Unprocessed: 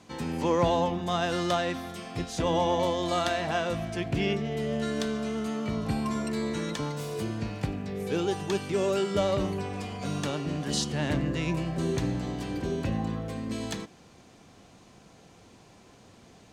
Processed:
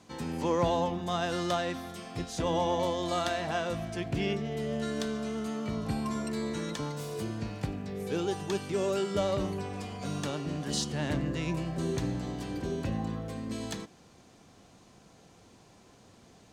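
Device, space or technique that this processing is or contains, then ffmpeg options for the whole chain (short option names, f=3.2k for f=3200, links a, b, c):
exciter from parts: -filter_complex "[0:a]asplit=2[a][b];[b]highpass=f=2.2k:w=0.5412,highpass=f=2.2k:w=1.3066,asoftclip=type=tanh:threshold=-29dB,volume=-13dB[c];[a][c]amix=inputs=2:normalize=0,volume=-3dB"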